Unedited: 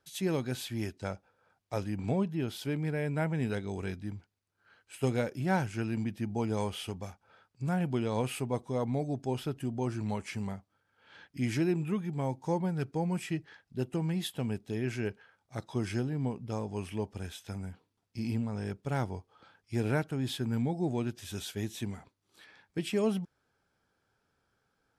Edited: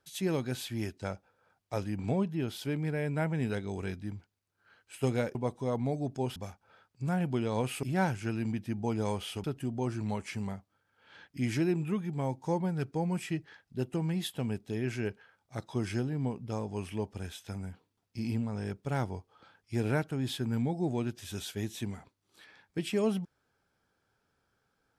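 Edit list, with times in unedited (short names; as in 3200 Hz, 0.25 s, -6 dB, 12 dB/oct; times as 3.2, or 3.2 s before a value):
5.35–6.96 swap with 8.43–9.44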